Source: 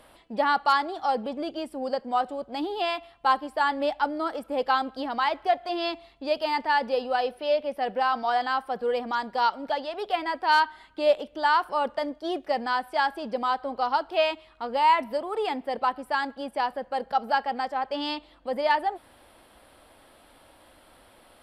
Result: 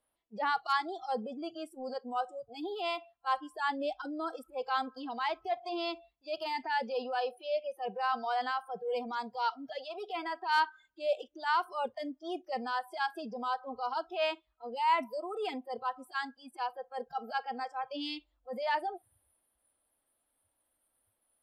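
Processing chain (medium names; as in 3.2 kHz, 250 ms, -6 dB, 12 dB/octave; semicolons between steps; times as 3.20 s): transient shaper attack -8 dB, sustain +1 dB; spectral noise reduction 24 dB; trim -5.5 dB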